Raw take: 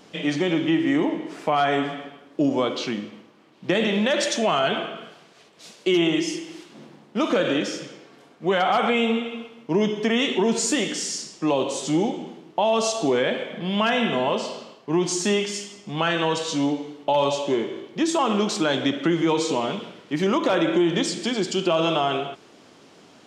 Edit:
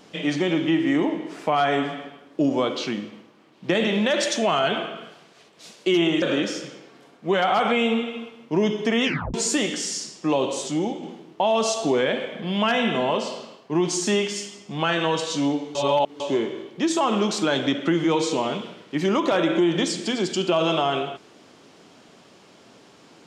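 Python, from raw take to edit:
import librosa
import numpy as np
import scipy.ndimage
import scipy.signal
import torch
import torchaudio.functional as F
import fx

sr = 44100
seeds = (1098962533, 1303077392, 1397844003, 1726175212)

y = fx.edit(x, sr, fx.cut(start_s=6.22, length_s=1.18),
    fx.tape_stop(start_s=10.22, length_s=0.3),
    fx.clip_gain(start_s=11.86, length_s=0.35, db=-3.0),
    fx.reverse_span(start_s=16.93, length_s=0.45), tone=tone)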